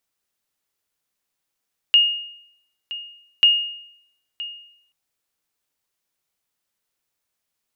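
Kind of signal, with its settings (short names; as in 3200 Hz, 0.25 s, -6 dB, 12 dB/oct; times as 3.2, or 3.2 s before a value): sonar ping 2850 Hz, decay 0.72 s, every 1.49 s, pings 2, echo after 0.97 s, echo -17 dB -7.5 dBFS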